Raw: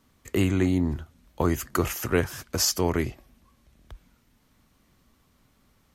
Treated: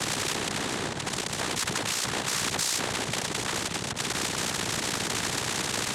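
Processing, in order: infinite clipping; AM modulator 61 Hz, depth 75%; noise vocoder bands 6; spectral compressor 2:1; gain +5.5 dB

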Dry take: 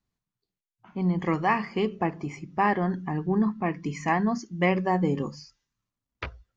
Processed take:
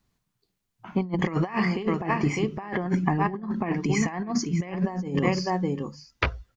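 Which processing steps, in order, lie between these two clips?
echo 0.603 s -12.5 dB; negative-ratio compressor -30 dBFS, ratio -0.5; gain +5.5 dB

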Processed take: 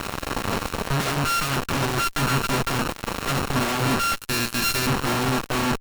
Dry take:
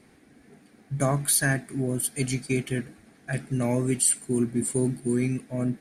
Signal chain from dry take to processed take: sample sorter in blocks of 32 samples; 4.16–4.87 steep high-pass 1600 Hz 36 dB/oct; compressor 3:1, threshold -43 dBFS, peak gain reduction 18 dB; fuzz box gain 51 dB, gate -55 dBFS; added harmonics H 6 -6 dB, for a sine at -9.5 dBFS; gain -7.5 dB

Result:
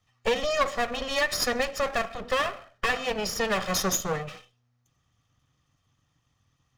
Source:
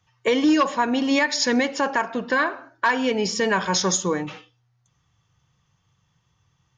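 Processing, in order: minimum comb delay 1.6 ms; gain -3 dB

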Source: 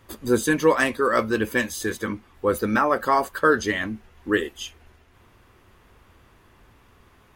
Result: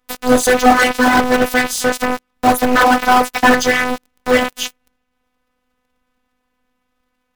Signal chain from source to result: cycle switcher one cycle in 2, inverted; robotiser 251 Hz; sample leveller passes 5; gain -2 dB

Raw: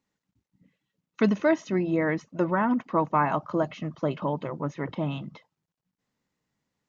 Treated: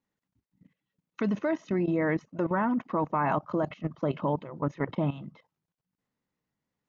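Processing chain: high shelf 3900 Hz -8.5 dB; level quantiser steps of 15 dB; gain +4 dB

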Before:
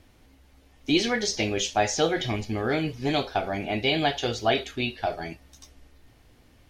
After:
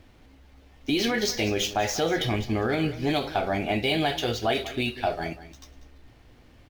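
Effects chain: median filter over 5 samples; limiter -18.5 dBFS, peak gain reduction 8.5 dB; echo 0.192 s -15 dB; gain +3 dB

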